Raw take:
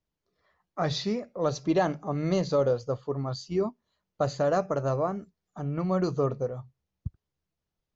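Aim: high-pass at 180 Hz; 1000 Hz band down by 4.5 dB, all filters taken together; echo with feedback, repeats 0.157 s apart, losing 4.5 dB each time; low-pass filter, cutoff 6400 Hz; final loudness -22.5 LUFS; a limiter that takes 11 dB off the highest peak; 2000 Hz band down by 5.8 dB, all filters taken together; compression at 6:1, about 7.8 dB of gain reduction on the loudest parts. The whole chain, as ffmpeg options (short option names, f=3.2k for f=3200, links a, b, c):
-af "highpass=180,lowpass=6.4k,equalizer=f=1k:t=o:g=-5.5,equalizer=f=2k:t=o:g=-5.5,acompressor=threshold=-30dB:ratio=6,alimiter=level_in=6.5dB:limit=-24dB:level=0:latency=1,volume=-6.5dB,aecho=1:1:157|314|471|628|785|942|1099|1256|1413:0.596|0.357|0.214|0.129|0.0772|0.0463|0.0278|0.0167|0.01,volume=16.5dB"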